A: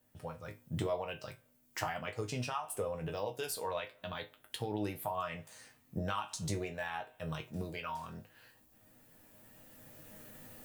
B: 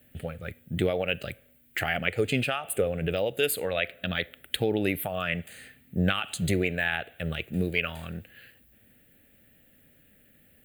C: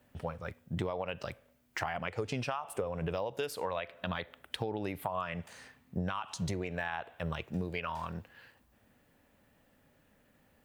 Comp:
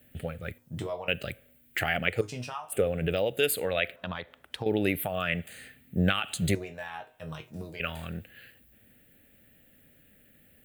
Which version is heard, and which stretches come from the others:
B
0.58–1.08 s: from A
2.21–2.72 s: from A
3.96–4.66 s: from C
6.55–7.80 s: from A

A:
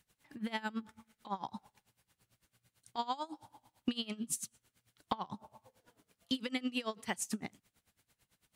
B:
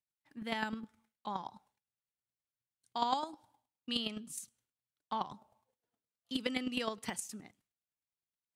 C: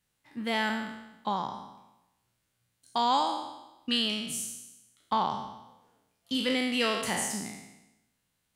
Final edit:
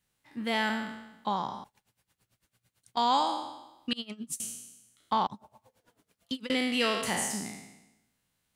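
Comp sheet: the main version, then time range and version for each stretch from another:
C
1.64–2.97 s: from A
3.93–4.40 s: from A
5.27–6.50 s: from A
not used: B

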